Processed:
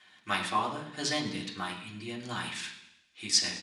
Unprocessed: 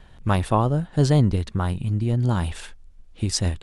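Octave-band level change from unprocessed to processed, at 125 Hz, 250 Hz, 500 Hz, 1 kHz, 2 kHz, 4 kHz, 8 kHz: -25.0 dB, -14.0 dB, -13.5 dB, -5.5 dB, +1.5 dB, +3.0 dB, +0.5 dB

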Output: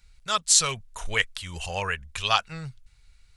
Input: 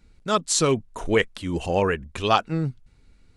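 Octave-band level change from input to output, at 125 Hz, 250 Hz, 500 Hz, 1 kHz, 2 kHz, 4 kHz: -8.5 dB, -16.5 dB, -12.5 dB, -4.0 dB, +1.0 dB, +3.5 dB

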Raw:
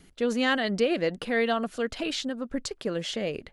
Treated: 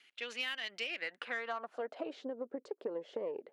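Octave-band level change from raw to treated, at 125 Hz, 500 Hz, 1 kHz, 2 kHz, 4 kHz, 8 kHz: under -25 dB, -12.5 dB, -11.5 dB, -9.0 dB, -9.5 dB, under -15 dB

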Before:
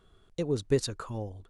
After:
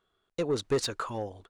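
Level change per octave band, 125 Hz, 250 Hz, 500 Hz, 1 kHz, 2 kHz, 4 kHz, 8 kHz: -5.0 dB, -1.5 dB, +0.5 dB, +7.5 dB, +4.5 dB, +4.0 dB, +1.5 dB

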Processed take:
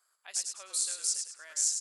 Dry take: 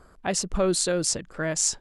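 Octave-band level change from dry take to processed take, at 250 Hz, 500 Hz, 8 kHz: under -40 dB, -31.5 dB, -3.0 dB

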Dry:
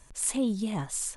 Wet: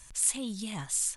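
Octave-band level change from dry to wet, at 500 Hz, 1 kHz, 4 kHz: -10.5 dB, -5.5 dB, +2.5 dB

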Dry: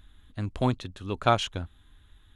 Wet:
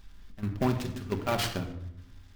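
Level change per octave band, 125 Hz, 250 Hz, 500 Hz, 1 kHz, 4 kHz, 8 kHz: -1.5 dB, 0.0 dB, -3.0 dB, -6.5 dB, -2.5 dB, +3.0 dB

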